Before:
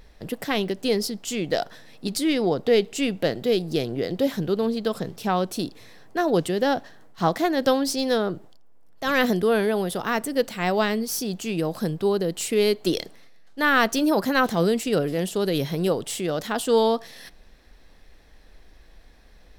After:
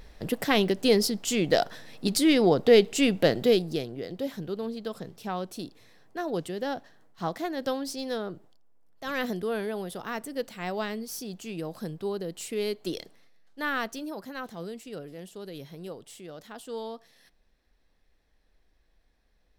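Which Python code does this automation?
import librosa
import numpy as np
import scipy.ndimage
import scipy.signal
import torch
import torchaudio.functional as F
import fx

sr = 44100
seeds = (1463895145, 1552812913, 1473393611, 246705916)

y = fx.gain(x, sr, db=fx.line((3.47, 1.5), (3.92, -9.5), (13.68, -9.5), (14.16, -17.0)))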